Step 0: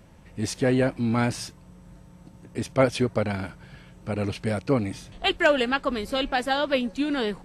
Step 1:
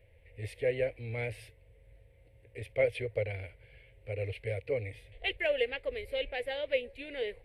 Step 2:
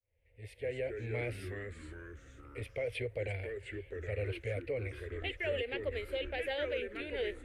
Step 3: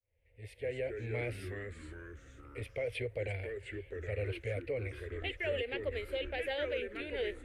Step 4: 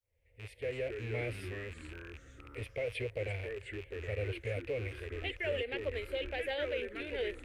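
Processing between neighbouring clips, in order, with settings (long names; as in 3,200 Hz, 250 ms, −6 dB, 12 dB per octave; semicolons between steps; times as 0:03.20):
drawn EQ curve 110 Hz 0 dB, 170 Hz −26 dB, 340 Hz −14 dB, 480 Hz +5 dB, 900 Hz −17 dB, 1,300 Hz −23 dB, 2,100 Hz +6 dB, 4,000 Hz −10 dB, 6,300 Hz −26 dB, 10,000 Hz −7 dB; level −6.5 dB
fade in at the beginning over 1.20 s; brickwall limiter −27.5 dBFS, peak gain reduction 11 dB; delay with pitch and tempo change per echo 153 ms, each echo −3 semitones, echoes 3, each echo −6 dB
no processing that can be heard
loose part that buzzes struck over −48 dBFS, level −38 dBFS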